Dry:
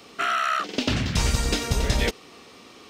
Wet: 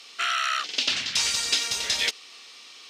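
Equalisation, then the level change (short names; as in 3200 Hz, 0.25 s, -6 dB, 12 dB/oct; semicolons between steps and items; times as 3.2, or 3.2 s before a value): band-pass 3900 Hz, Q 0.89; high shelf 4500 Hz +6 dB; +4.0 dB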